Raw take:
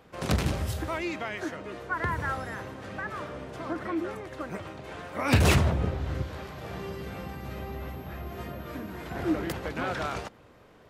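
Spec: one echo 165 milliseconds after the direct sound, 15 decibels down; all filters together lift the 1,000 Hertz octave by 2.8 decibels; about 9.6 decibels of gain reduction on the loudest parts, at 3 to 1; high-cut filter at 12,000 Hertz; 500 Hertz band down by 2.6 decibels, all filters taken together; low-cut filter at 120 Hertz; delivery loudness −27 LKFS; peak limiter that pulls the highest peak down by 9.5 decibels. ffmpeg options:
ffmpeg -i in.wav -af "highpass=120,lowpass=12000,equalizer=frequency=500:width_type=o:gain=-5,equalizer=frequency=1000:width_type=o:gain=5,acompressor=threshold=-31dB:ratio=3,alimiter=level_in=3dB:limit=-24dB:level=0:latency=1,volume=-3dB,aecho=1:1:165:0.178,volume=11dB" out.wav

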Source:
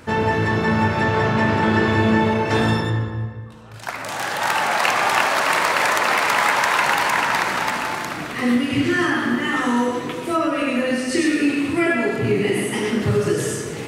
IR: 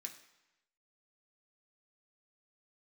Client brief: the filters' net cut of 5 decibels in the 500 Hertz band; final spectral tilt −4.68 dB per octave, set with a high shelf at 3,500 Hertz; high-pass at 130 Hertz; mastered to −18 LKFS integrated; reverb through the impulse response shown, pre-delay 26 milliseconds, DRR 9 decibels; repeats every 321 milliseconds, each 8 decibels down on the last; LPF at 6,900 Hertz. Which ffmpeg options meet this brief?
-filter_complex "[0:a]highpass=130,lowpass=6900,equalizer=frequency=500:width_type=o:gain=-6.5,highshelf=frequency=3500:gain=-3.5,aecho=1:1:321|642|963|1284|1605:0.398|0.159|0.0637|0.0255|0.0102,asplit=2[link_01][link_02];[1:a]atrim=start_sample=2205,adelay=26[link_03];[link_02][link_03]afir=irnorm=-1:irlink=0,volume=-4.5dB[link_04];[link_01][link_04]amix=inputs=2:normalize=0,volume=2.5dB"

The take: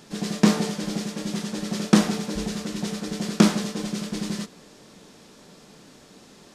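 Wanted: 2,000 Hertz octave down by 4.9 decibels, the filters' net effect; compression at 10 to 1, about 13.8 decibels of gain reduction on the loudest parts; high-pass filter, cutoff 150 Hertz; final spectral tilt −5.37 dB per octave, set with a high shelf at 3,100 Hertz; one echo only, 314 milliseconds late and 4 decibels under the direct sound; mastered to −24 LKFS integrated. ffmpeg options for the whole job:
ffmpeg -i in.wav -af "highpass=150,equalizer=frequency=2000:width_type=o:gain=-4,highshelf=frequency=3100:gain=-6.5,acompressor=threshold=-27dB:ratio=10,aecho=1:1:314:0.631,volume=8dB" out.wav

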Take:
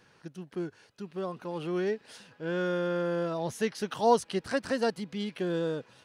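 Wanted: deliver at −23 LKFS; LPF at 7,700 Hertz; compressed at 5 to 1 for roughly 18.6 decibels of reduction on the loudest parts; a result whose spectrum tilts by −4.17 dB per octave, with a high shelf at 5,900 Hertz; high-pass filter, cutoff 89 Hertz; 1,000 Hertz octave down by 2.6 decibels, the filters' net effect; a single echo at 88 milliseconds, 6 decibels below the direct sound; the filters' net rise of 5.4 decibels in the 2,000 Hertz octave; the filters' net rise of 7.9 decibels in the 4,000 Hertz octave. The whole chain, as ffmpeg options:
ffmpeg -i in.wav -af "highpass=89,lowpass=7700,equalizer=frequency=1000:width_type=o:gain=-6,equalizer=frequency=2000:width_type=o:gain=7.5,equalizer=frequency=4000:width_type=o:gain=5,highshelf=frequency=5900:gain=9,acompressor=threshold=-41dB:ratio=5,aecho=1:1:88:0.501,volume=20dB" out.wav

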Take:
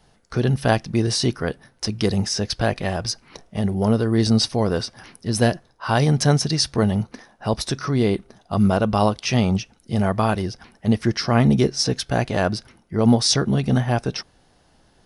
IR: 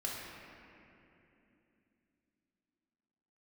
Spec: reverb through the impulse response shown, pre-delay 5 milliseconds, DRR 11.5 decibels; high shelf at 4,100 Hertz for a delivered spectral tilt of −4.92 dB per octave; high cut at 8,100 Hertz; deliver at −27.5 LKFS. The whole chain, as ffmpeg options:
-filter_complex "[0:a]lowpass=8100,highshelf=frequency=4100:gain=5.5,asplit=2[link_01][link_02];[1:a]atrim=start_sample=2205,adelay=5[link_03];[link_02][link_03]afir=irnorm=-1:irlink=0,volume=-14.5dB[link_04];[link_01][link_04]amix=inputs=2:normalize=0,volume=-7dB"

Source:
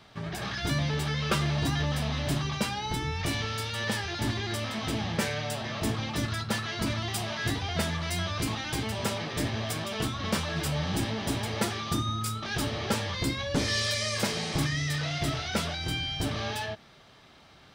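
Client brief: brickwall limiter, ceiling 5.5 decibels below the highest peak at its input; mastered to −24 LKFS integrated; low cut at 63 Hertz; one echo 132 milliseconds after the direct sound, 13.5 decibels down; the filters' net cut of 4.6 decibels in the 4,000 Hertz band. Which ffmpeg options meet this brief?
ffmpeg -i in.wav -af "highpass=63,equalizer=frequency=4000:width_type=o:gain=-6,alimiter=limit=-22dB:level=0:latency=1,aecho=1:1:132:0.211,volume=8.5dB" out.wav

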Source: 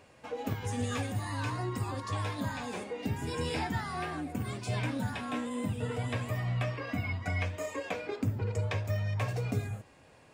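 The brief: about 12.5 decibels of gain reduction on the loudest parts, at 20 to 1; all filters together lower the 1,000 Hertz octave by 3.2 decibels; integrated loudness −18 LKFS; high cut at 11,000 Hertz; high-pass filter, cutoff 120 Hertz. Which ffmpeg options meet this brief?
ffmpeg -i in.wav -af "highpass=120,lowpass=11000,equalizer=frequency=1000:width_type=o:gain=-4,acompressor=threshold=-41dB:ratio=20,volume=27.5dB" out.wav

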